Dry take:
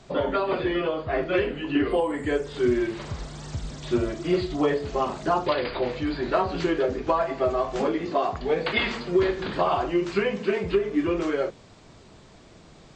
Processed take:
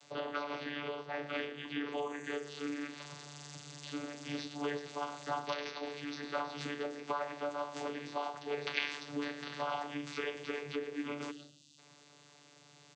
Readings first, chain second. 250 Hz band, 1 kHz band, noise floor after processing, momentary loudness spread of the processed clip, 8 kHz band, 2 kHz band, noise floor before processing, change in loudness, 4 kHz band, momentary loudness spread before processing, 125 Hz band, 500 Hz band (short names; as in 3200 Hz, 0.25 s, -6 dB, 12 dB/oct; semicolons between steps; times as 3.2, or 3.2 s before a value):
-15.0 dB, -12.0 dB, -61 dBFS, 11 LU, n/a, -9.0 dB, -51 dBFS, -14.0 dB, -7.5 dB, 5 LU, -16.5 dB, -16.5 dB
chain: differentiator; in parallel at -1 dB: compressor, threshold -51 dBFS, peak gain reduction 19.5 dB; on the sum: echo 0.117 s -15.5 dB; spectral gain 11.3–11.78, 340–3200 Hz -22 dB; vocoder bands 16, saw 145 Hz; gain +3.5 dB